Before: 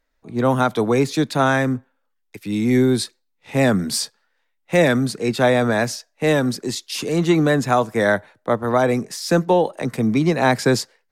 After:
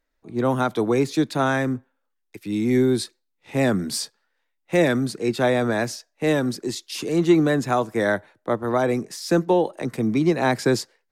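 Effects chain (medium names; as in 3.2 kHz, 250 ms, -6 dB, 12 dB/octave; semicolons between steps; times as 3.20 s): peaking EQ 340 Hz +6 dB 0.39 oct; trim -4.5 dB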